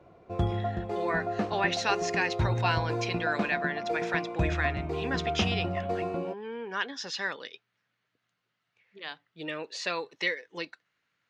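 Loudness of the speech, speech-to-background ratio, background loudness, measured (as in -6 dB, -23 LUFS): -32.5 LUFS, -0.5 dB, -32.0 LUFS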